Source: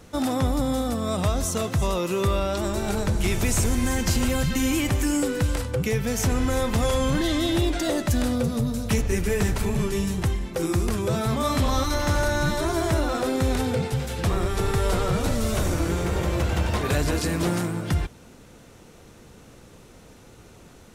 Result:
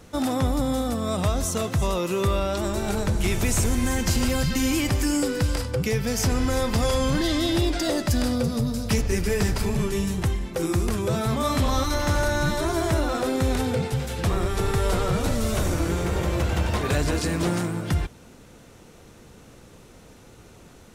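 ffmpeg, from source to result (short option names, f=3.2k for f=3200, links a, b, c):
-filter_complex "[0:a]asettb=1/sr,asplit=3[a][b][c];[a]atrim=end=4.174[d];[b]atrim=start=4.17:end=9.77,asetpts=PTS-STARTPTS,afade=t=in:d=0.004:c=qsin,afade=t=out:st=5.596:d=0.004:c=qsin,equalizer=f=4.9k:w=5.8:g=9[e];[c]atrim=start=9.766[f];[d][e]acrossfade=d=0.004:c1=hsin:c2=qsin[g];[g][f]acrossfade=d=0.004:c1=qsin:c2=hsin,asettb=1/sr,asplit=3[h][i][j];[h]atrim=end=16.844[k];[i]atrim=start=16.84:end=17.72,asetpts=PTS-STARTPTS,afade=t=in:d=0.004:c=qsin,afade=t=out:st=0.876:d=0.004:c=qsin,equalizer=f=12k:t=o:w=0.27:g=-6[l];[j]atrim=start=17.716[m];[k][l]acrossfade=d=0.004:c1=hsin:c2=qsin[n];[n][m]acrossfade=d=0.004:c1=qsin:c2=hsin"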